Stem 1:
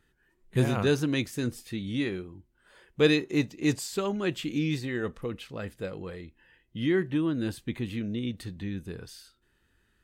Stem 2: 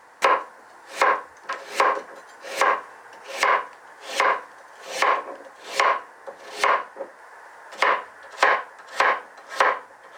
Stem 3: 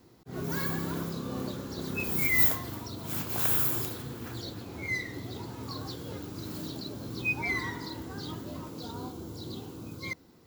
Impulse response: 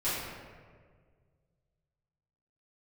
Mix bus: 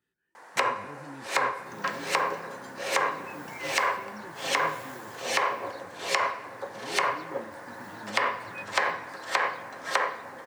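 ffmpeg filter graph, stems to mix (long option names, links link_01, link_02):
-filter_complex "[0:a]acrossover=split=380[link_01][link_02];[link_02]acompressor=threshold=-42dB:ratio=6[link_03];[link_01][link_03]amix=inputs=2:normalize=0,alimiter=level_in=2.5dB:limit=-24dB:level=0:latency=1,volume=-2.5dB,flanger=delay=18:depth=6.6:speed=0.23,volume=-9dB[link_04];[1:a]acompressor=threshold=-23dB:ratio=6,adelay=350,volume=0dB,asplit=2[link_05][link_06];[link_06]volume=-18.5dB[link_07];[2:a]acrossover=split=8800[link_08][link_09];[link_09]acompressor=threshold=-41dB:ratio=4:attack=1:release=60[link_10];[link_08][link_10]amix=inputs=2:normalize=0,adelay=1300,volume=-12.5dB[link_11];[3:a]atrim=start_sample=2205[link_12];[link_07][link_12]afir=irnorm=-1:irlink=0[link_13];[link_04][link_05][link_11][link_13]amix=inputs=4:normalize=0,highpass=140"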